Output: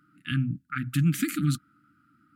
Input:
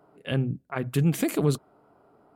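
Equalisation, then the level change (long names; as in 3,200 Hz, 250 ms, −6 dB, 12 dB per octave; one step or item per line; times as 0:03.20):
high-pass filter 72 Hz
linear-phase brick-wall band-stop 330–1,200 Hz
parametric band 1,200 Hz +5.5 dB 0.91 octaves
0.0 dB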